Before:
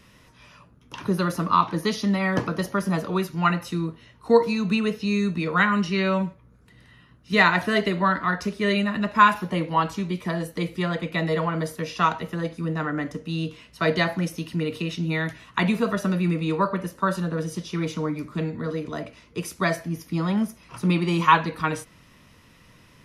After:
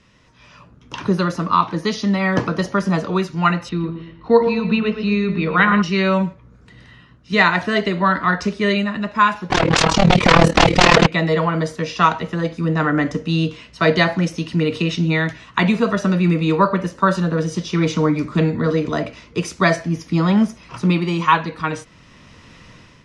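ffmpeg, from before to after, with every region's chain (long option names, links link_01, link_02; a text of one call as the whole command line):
ffmpeg -i in.wav -filter_complex "[0:a]asettb=1/sr,asplit=3[link_01][link_02][link_03];[link_01]atrim=end=3.694[link_04];[link_02]atrim=start=3.69:end=5.82,asetpts=PTS-STARTPTS,afade=type=in:duration=0.004:curve=qsin,afade=type=out:start_time=2.126:duration=0.004:curve=qsin,lowpass=frequency=4100:width=0.5412,lowpass=frequency=4100:width=1.3066,aeval=exprs='val(0)+0.00224*(sin(2*PI*50*n/s)+sin(2*PI*2*50*n/s)/2+sin(2*PI*3*50*n/s)/3+sin(2*PI*4*50*n/s)/4+sin(2*PI*5*50*n/s)/5)':channel_layout=same,asplit=2[link_05][link_06];[link_06]adelay=116,lowpass=frequency=2600:poles=1,volume=-8dB,asplit=2[link_07][link_08];[link_08]adelay=116,lowpass=frequency=2600:poles=1,volume=0.4,asplit=2[link_09][link_10];[link_10]adelay=116,lowpass=frequency=2600:poles=1,volume=0.4,asplit=2[link_11][link_12];[link_12]adelay=116,lowpass=frequency=2600:poles=1,volume=0.4,asplit=2[link_13][link_14];[link_14]adelay=116,lowpass=frequency=2600:poles=1,volume=0.4[link_15];[link_05][link_07][link_09][link_11][link_13][link_15]amix=inputs=6:normalize=0,atrim=end_sample=93933[link_16];[link_03]atrim=start=5.816[link_17];[link_04][link_16]acrossfade=duration=0.004:curve1=hsin:curve2=qsin[link_18];[link_18][link_17]acrossfade=duration=0.004:curve1=qsin:curve2=hsin,asettb=1/sr,asplit=3[link_19][link_20][link_21];[link_19]atrim=end=9.504[link_22];[link_20]atrim=start=9.5:end=11.07,asetpts=PTS-STARTPTS,afade=type=in:duration=0.004:curve=qsin,afade=type=out:start_time=1.566:duration=0.004:curve=qsin,aeval=exprs='0.316*sin(PI/2*7.94*val(0)/0.316)':channel_layout=same,adynamicsmooth=sensitivity=7:basefreq=4400,tremolo=f=38:d=0.857[link_23];[link_21]atrim=start=11.066[link_24];[link_22][link_23]acrossfade=duration=0.004:curve1=hsin:curve2=qsin[link_25];[link_25][link_24]acrossfade=duration=0.004:curve1=qsin:curve2=hsin,lowpass=frequency=7600:width=0.5412,lowpass=frequency=7600:width=1.3066,dynaudnorm=framelen=230:gausssize=5:maxgain=12dB,volume=-1dB" out.wav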